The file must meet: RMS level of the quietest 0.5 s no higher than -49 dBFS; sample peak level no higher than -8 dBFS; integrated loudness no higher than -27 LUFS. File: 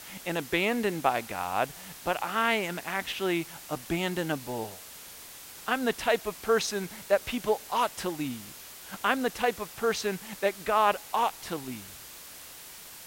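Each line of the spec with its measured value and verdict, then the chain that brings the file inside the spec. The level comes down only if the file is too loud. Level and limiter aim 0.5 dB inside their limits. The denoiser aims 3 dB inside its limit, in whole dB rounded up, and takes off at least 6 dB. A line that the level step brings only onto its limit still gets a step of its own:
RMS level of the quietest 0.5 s -46 dBFS: fail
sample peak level -10.5 dBFS: pass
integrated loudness -29.5 LUFS: pass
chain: noise reduction 6 dB, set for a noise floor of -46 dBFS

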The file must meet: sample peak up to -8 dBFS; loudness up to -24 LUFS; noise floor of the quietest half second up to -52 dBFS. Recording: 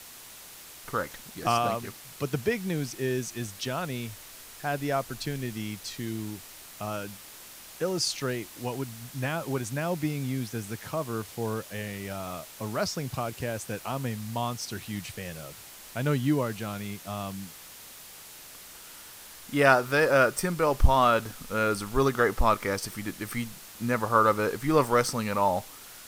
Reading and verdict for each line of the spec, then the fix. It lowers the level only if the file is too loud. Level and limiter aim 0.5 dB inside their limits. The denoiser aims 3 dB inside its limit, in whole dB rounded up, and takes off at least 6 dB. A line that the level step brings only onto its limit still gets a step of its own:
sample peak -6.0 dBFS: fail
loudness -29.0 LUFS: pass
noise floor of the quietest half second -47 dBFS: fail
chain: noise reduction 8 dB, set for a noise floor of -47 dBFS; peak limiter -8.5 dBFS

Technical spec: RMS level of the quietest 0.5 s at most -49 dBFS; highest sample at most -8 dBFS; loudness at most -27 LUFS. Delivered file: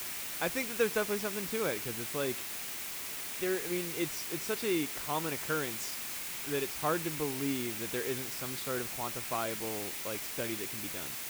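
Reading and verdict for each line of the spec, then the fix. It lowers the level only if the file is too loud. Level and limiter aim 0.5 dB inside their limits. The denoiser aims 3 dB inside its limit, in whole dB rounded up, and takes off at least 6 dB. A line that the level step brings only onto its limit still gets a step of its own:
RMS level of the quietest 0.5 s -40 dBFS: fail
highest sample -15.0 dBFS: pass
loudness -34.0 LUFS: pass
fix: noise reduction 12 dB, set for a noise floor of -40 dBFS

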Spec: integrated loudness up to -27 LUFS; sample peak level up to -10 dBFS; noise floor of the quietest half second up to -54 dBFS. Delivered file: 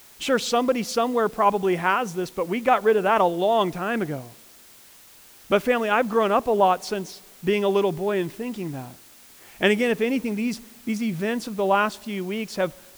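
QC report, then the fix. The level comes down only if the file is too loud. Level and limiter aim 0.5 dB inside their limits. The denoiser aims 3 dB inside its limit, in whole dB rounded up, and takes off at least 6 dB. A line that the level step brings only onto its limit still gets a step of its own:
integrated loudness -23.5 LUFS: fail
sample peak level -6.5 dBFS: fail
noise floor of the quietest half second -50 dBFS: fail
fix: noise reduction 6 dB, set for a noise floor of -50 dBFS; trim -4 dB

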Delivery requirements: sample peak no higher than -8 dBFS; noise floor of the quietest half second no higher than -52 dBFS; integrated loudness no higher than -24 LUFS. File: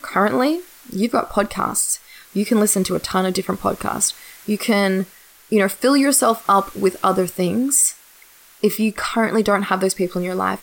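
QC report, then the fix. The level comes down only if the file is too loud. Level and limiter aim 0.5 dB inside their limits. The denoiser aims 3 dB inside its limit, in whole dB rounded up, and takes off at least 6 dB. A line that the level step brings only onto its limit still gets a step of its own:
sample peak -5.0 dBFS: fail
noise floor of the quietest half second -48 dBFS: fail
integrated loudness -19.0 LUFS: fail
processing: trim -5.5 dB

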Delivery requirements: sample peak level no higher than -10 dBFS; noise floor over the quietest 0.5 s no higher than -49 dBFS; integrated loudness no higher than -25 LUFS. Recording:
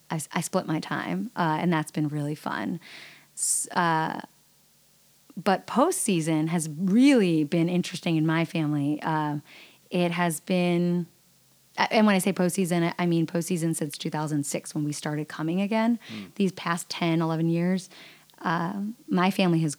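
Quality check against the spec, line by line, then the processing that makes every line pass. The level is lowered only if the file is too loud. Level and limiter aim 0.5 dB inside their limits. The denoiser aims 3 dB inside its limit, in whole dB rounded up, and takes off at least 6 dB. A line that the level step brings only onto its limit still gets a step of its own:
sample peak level -6.0 dBFS: fail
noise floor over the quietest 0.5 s -61 dBFS: pass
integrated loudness -26.0 LUFS: pass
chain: peak limiter -10.5 dBFS

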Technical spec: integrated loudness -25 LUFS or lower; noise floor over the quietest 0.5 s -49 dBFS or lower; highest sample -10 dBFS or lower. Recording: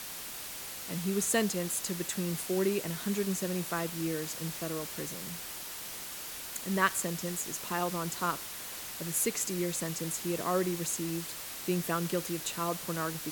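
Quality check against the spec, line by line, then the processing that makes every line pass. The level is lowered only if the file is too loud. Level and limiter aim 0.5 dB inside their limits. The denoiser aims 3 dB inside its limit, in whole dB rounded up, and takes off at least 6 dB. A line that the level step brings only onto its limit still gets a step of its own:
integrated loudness -33.0 LUFS: pass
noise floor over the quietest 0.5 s -42 dBFS: fail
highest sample -11.5 dBFS: pass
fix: noise reduction 10 dB, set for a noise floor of -42 dBFS

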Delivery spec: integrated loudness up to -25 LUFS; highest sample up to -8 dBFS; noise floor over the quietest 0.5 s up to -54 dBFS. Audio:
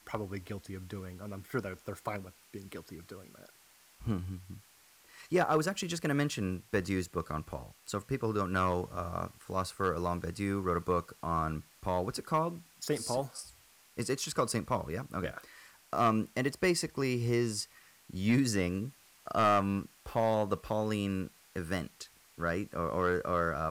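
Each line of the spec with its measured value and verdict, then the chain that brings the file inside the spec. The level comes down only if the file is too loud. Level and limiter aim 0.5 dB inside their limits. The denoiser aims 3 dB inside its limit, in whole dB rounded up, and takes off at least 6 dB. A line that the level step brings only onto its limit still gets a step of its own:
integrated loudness -33.5 LUFS: pass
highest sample -19.5 dBFS: pass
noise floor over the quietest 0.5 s -62 dBFS: pass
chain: none needed

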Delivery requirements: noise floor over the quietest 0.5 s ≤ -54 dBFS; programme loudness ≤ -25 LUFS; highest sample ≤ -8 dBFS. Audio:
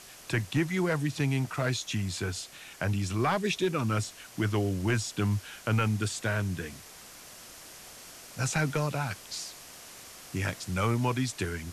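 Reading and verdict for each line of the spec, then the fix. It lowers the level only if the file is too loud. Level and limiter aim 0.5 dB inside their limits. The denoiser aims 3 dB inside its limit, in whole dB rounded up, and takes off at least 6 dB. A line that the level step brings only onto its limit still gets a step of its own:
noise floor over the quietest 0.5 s -49 dBFS: fail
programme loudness -30.5 LUFS: pass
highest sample -18.0 dBFS: pass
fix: noise reduction 8 dB, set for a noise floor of -49 dBFS

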